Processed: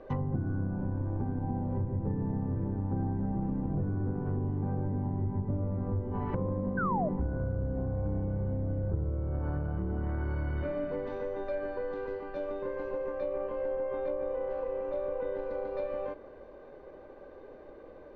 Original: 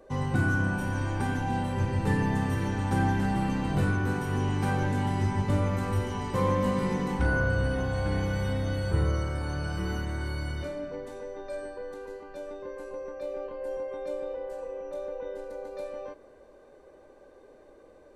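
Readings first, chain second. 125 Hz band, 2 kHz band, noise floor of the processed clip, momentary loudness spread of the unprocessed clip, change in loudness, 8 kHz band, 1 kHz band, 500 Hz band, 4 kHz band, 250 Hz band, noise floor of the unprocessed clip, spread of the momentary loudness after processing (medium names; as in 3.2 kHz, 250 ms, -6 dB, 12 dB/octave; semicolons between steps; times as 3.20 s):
-3.5 dB, -13.5 dB, -50 dBFS, 13 LU, -3.5 dB, under -30 dB, -6.5 dB, -1.0 dB, under -20 dB, -3.5 dB, -54 dBFS, 6 LU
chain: partial rectifier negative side -3 dB; low-pass that closes with the level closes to 570 Hz, closed at -27 dBFS; compression 6:1, threshold -35 dBFS, peak gain reduction 13 dB; painted sound fall, 6.77–7.09 s, 570–1600 Hz -37 dBFS; distance through air 270 m; trim +6.5 dB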